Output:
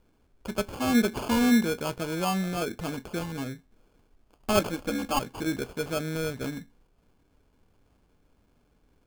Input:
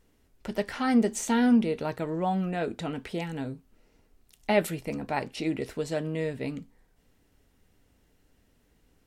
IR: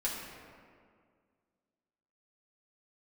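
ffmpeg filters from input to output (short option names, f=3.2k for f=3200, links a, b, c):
-filter_complex "[0:a]asettb=1/sr,asplit=3[a][b][c];[a]atrim=end=4.594[d];[b]atrim=start=4.59:end=5.19,asetpts=PTS-STARTPTS,afade=t=in:d=0.004:c=qsin,afade=t=out:st=0.596:d=0.004:c=qsin,aecho=1:1:3.7:0.87,atrim=end_sample=26460[e];[c]atrim=start=5.186[f];[d][e]acrossfade=d=0.004:c1=hsin:c2=qsin[g];[g][f]acrossfade=d=0.004:c1=qsin:c2=hsin,acrusher=samples=23:mix=1:aa=0.000001"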